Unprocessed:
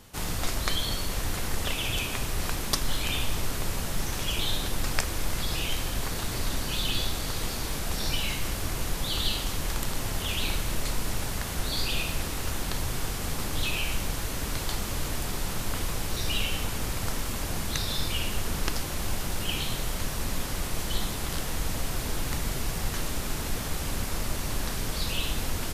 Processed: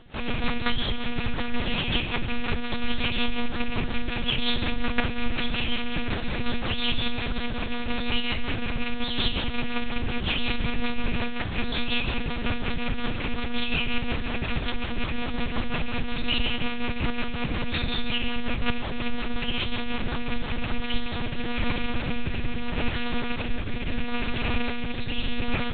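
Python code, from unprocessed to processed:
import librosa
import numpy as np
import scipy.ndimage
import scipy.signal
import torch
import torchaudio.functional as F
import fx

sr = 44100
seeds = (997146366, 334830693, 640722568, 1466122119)

y = fx.rattle_buzz(x, sr, strikes_db=-30.0, level_db=-23.0)
y = fx.rotary_switch(y, sr, hz=5.5, then_hz=0.75, switch_at_s=20.65)
y = fx.lpc_monotone(y, sr, seeds[0], pitch_hz=240.0, order=8)
y = y * librosa.db_to_amplitude(5.5)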